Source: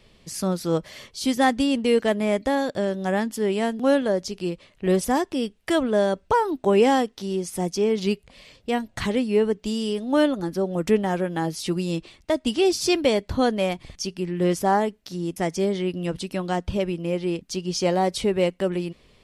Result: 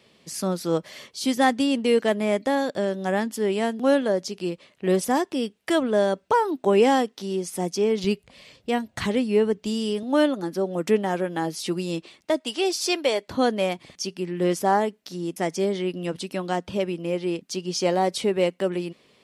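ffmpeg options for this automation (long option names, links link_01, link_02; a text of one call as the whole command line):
ffmpeg -i in.wav -af "asetnsamples=nb_out_samples=441:pad=0,asendcmd='8.04 highpass f 79;10.03 highpass f 200;12.4 highpass f 450;13.28 highpass f 190',highpass=170" out.wav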